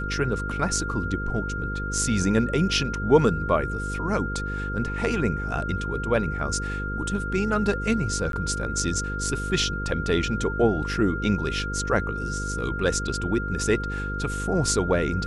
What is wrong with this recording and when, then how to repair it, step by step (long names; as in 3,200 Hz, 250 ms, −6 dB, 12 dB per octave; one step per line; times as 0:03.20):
mains buzz 50 Hz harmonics 10 −31 dBFS
whistle 1,400 Hz −31 dBFS
0:08.32–0:08.33: drop-out 12 ms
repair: notch filter 1,400 Hz, Q 30
hum removal 50 Hz, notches 10
repair the gap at 0:08.32, 12 ms